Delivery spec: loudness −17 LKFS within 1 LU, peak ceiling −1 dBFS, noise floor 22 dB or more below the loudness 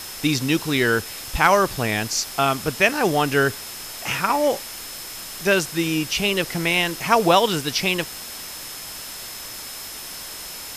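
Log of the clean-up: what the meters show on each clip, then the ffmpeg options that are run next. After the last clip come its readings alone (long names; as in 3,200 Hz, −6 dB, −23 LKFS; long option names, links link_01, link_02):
interfering tone 5,200 Hz; level of the tone −40 dBFS; background noise floor −35 dBFS; target noise floor −44 dBFS; integrated loudness −22.0 LKFS; sample peak −2.5 dBFS; target loudness −17.0 LKFS
→ -af "bandreject=frequency=5200:width=30"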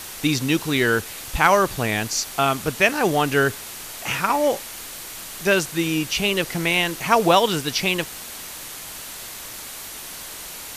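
interfering tone none found; background noise floor −36 dBFS; target noise floor −43 dBFS
→ -af "afftdn=noise_reduction=7:noise_floor=-36"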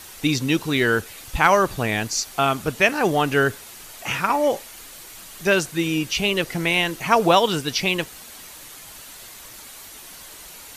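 background noise floor −42 dBFS; target noise floor −43 dBFS
→ -af "afftdn=noise_reduction=6:noise_floor=-42"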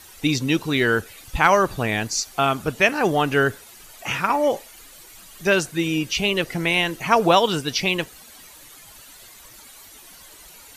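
background noise floor −46 dBFS; integrated loudness −21.0 LKFS; sample peak −2.5 dBFS; target loudness −17.0 LKFS
→ -af "volume=4dB,alimiter=limit=-1dB:level=0:latency=1"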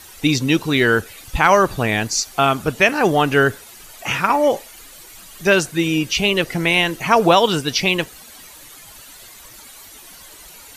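integrated loudness −17.0 LKFS; sample peak −1.0 dBFS; background noise floor −42 dBFS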